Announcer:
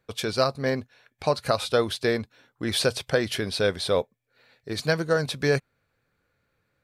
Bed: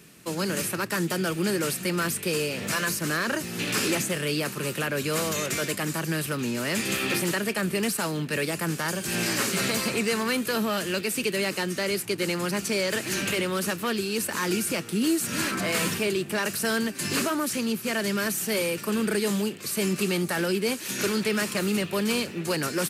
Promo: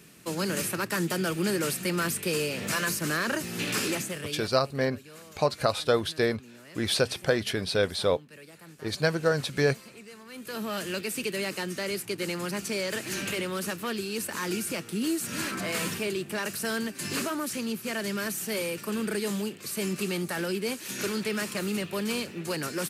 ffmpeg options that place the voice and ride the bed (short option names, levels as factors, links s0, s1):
-filter_complex "[0:a]adelay=4150,volume=0.841[s0];[1:a]volume=5.96,afade=t=out:st=3.63:d=0.98:silence=0.1,afade=t=in:st=10.29:d=0.5:silence=0.141254[s1];[s0][s1]amix=inputs=2:normalize=0"